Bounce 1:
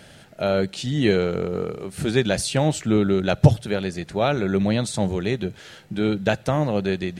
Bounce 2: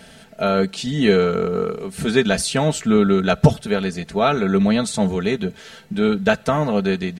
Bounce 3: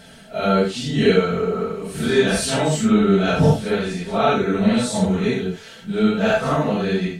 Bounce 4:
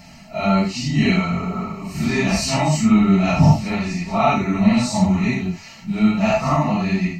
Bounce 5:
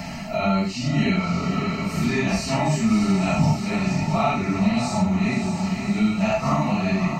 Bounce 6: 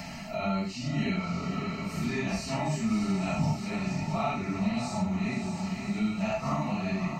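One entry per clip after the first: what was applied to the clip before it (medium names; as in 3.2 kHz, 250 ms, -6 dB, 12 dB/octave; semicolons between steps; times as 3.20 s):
comb 4.5 ms, depth 67%; dynamic bell 1.3 kHz, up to +6 dB, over -42 dBFS, Q 3; trim +1.5 dB
phase randomisation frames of 200 ms
static phaser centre 2.3 kHz, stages 8; trim +5 dB
echo that smears into a reverb 568 ms, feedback 45%, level -9 dB; three bands compressed up and down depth 70%; trim -4.5 dB
tape noise reduction on one side only encoder only; trim -8.5 dB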